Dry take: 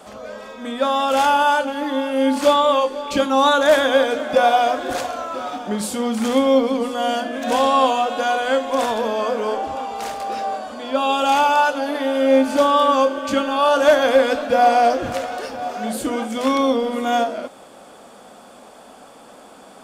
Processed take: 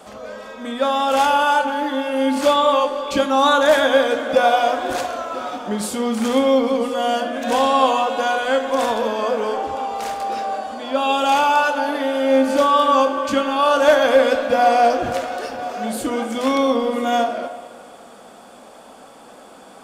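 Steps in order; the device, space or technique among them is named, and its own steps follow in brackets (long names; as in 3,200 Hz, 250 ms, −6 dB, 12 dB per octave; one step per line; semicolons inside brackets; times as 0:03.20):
filtered reverb send (on a send: high-pass filter 300 Hz 24 dB per octave + low-pass filter 3,000 Hz + convolution reverb RT60 1.9 s, pre-delay 3 ms, DRR 7.5 dB)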